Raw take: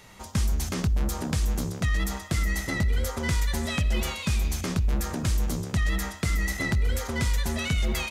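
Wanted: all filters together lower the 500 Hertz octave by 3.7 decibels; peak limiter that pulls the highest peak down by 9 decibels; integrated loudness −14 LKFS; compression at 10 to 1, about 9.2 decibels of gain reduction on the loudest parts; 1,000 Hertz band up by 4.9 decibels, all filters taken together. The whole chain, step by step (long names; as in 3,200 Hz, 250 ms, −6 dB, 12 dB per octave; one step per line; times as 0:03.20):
parametric band 500 Hz −7 dB
parametric band 1,000 Hz +8 dB
downward compressor 10 to 1, threshold −30 dBFS
level +22 dB
brickwall limiter −4.5 dBFS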